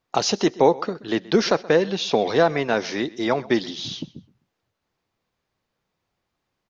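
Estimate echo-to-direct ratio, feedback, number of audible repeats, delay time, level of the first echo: −20.5 dB, 26%, 2, 127 ms, −21.0 dB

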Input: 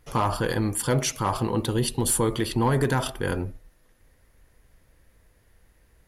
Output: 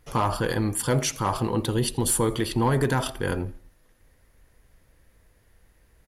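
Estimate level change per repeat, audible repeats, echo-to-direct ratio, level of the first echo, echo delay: −7.0 dB, 2, −23.0 dB, −24.0 dB, 84 ms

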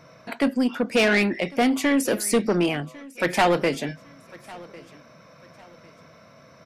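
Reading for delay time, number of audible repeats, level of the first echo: 1,101 ms, 2, −21.5 dB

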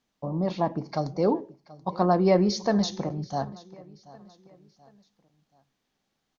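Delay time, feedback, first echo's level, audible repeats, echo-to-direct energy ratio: 731 ms, 41%, −20.5 dB, 2, −19.5 dB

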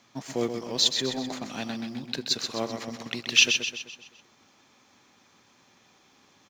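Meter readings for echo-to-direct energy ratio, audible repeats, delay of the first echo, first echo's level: −6.0 dB, 5, 128 ms, −7.0 dB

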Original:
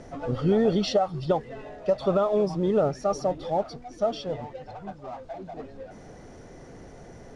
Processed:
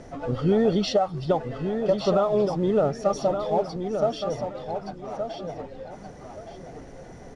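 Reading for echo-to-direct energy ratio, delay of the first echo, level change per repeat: −7.0 dB, 1,171 ms, −12.5 dB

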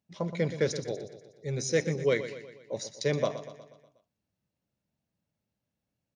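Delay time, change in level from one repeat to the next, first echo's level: 121 ms, −5.5 dB, −12.0 dB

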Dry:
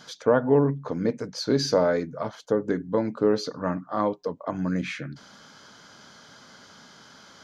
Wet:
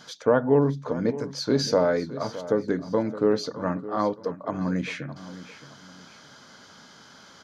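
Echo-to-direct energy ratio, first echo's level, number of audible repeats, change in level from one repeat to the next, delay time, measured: −14.5 dB, −15.0 dB, 2, −9.5 dB, 616 ms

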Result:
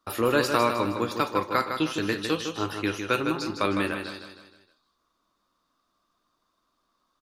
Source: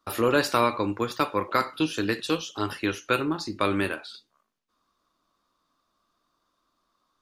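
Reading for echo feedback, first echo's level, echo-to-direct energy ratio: 45%, −7.0 dB, −6.0 dB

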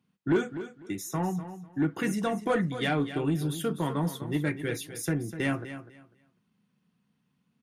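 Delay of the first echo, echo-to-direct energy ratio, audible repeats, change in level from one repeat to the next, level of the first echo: 249 ms, −12.0 dB, 2, −13.5 dB, −12.0 dB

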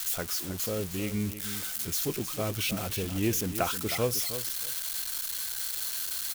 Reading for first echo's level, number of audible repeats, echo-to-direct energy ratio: −11.0 dB, 2, −11.0 dB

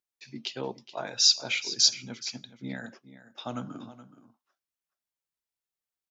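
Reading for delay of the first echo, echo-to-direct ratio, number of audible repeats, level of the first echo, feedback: 423 ms, −15.0 dB, 1, −15.0 dB, repeats not evenly spaced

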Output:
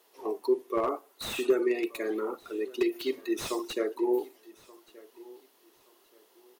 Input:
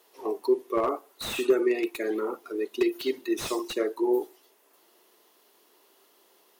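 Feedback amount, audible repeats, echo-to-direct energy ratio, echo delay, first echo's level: 28%, 2, −21.5 dB, 1,177 ms, −22.0 dB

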